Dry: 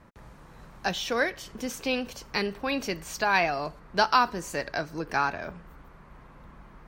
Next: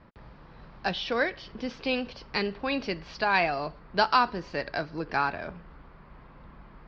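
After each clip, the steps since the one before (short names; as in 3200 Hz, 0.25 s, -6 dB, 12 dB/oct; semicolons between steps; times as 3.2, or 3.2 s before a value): Chebyshev low-pass 5000 Hz, order 5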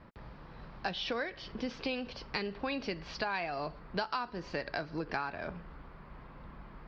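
compressor 6:1, threshold -32 dBFS, peak gain reduction 14.5 dB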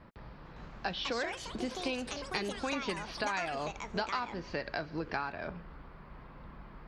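echoes that change speed 0.452 s, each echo +6 st, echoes 2, each echo -6 dB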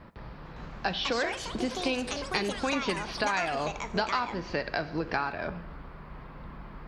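reverb RT60 0.95 s, pre-delay 37 ms, DRR 14.5 dB; gain +5.5 dB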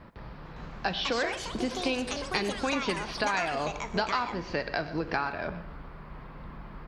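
echo 0.123 s -16.5 dB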